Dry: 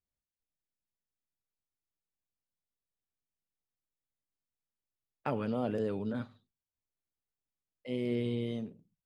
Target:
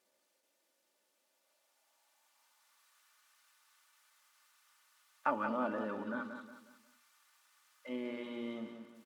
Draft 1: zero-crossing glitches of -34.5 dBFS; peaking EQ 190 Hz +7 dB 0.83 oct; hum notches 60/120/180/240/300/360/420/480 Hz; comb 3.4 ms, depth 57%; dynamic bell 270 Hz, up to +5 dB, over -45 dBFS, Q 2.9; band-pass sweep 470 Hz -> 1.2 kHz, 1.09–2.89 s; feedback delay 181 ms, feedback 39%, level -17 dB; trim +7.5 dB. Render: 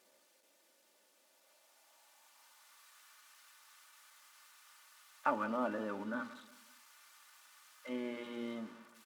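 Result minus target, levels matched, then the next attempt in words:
echo-to-direct -9 dB; zero-crossing glitches: distortion +8 dB
zero-crossing glitches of -43 dBFS; peaking EQ 190 Hz +7 dB 0.83 oct; hum notches 60/120/180/240/300/360/420/480 Hz; comb 3.4 ms, depth 57%; dynamic bell 270 Hz, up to +5 dB, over -45 dBFS, Q 2.9; band-pass sweep 470 Hz -> 1.2 kHz, 1.09–2.89 s; feedback delay 181 ms, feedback 39%, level -8 dB; trim +7.5 dB

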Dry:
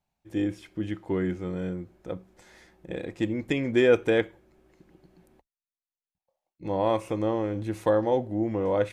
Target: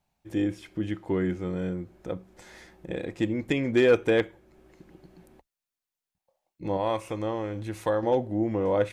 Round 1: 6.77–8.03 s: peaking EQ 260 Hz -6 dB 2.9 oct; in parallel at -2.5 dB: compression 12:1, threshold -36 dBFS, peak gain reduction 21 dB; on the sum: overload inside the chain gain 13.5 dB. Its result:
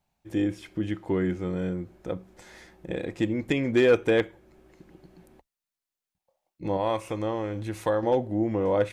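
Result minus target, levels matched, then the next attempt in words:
compression: peak gain reduction -6.5 dB
6.77–8.03 s: peaking EQ 260 Hz -6 dB 2.9 oct; in parallel at -2.5 dB: compression 12:1, threshold -43 dBFS, peak gain reduction 27.5 dB; on the sum: overload inside the chain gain 13.5 dB

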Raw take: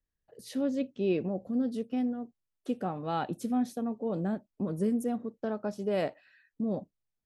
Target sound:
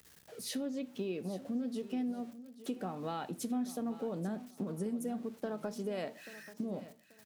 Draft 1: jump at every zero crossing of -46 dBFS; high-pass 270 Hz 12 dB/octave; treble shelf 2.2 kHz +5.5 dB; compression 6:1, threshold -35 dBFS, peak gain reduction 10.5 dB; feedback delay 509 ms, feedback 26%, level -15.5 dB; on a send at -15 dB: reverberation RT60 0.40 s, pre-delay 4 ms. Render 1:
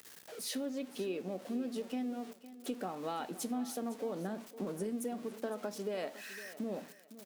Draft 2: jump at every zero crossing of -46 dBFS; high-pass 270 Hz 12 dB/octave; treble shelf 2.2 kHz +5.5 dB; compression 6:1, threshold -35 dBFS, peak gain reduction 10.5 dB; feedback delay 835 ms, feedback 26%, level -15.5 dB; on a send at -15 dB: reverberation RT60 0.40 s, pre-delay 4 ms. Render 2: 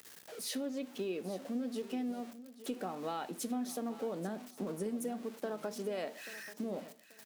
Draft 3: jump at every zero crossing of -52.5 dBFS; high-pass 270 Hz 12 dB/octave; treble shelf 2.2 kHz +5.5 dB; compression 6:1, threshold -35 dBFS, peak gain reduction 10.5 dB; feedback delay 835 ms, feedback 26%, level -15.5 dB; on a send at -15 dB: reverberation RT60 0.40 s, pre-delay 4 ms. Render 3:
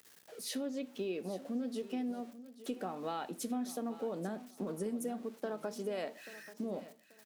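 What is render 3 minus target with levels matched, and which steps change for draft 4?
125 Hz band -4.0 dB
change: high-pass 110 Hz 12 dB/octave

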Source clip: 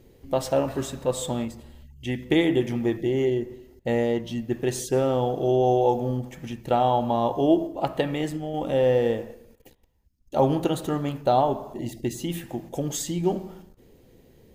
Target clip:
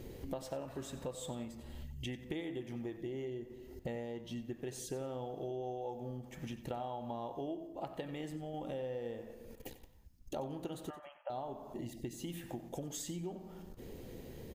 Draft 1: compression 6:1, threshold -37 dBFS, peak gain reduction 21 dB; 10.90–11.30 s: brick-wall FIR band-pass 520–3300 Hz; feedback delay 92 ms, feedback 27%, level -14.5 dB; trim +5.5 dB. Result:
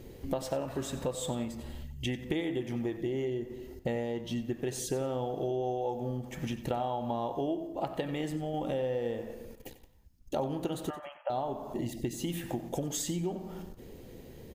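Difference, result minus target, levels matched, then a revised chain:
compression: peak gain reduction -8.5 dB
compression 6:1, threshold -47 dBFS, peak gain reduction 29 dB; 10.90–11.30 s: brick-wall FIR band-pass 520–3300 Hz; feedback delay 92 ms, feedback 27%, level -14.5 dB; trim +5.5 dB

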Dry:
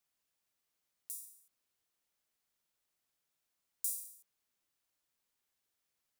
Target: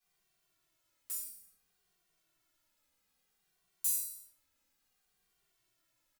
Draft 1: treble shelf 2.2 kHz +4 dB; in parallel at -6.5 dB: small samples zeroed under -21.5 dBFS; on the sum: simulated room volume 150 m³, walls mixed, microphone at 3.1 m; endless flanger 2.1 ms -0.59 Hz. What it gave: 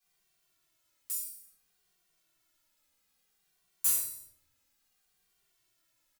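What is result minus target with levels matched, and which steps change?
2 kHz band +5.5 dB
remove: treble shelf 2.2 kHz +4 dB

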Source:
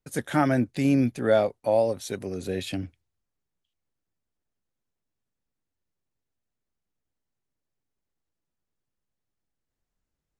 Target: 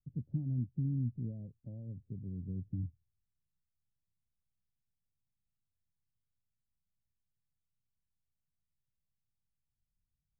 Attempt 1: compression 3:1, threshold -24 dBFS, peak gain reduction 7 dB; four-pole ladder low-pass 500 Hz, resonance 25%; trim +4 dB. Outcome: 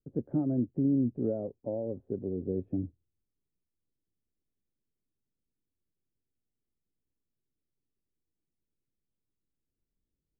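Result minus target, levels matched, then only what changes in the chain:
500 Hz band +17.5 dB
change: four-pole ladder low-pass 190 Hz, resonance 25%

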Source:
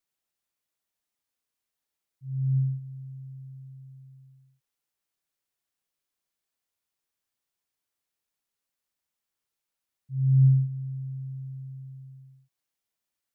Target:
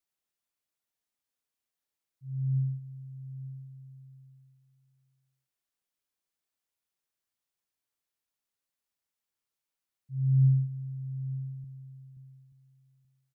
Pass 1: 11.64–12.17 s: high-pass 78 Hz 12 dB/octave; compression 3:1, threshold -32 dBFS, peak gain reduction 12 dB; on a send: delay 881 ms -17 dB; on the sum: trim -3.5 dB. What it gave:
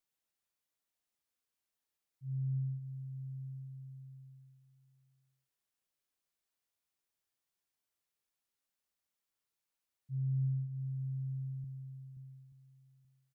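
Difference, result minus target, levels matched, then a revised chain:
compression: peak gain reduction +12 dB
11.64–12.17 s: high-pass 78 Hz 12 dB/octave; on a send: delay 881 ms -17 dB; on the sum: trim -3.5 dB

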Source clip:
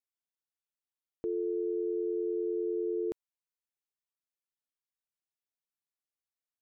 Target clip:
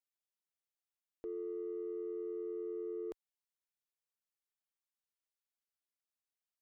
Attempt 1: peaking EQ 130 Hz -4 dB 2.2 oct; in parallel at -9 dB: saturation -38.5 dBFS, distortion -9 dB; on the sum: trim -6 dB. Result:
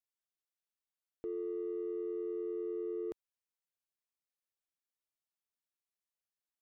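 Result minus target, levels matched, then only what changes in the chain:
125 Hz band +4.0 dB
change: peaking EQ 130 Hz -13.5 dB 2.2 oct

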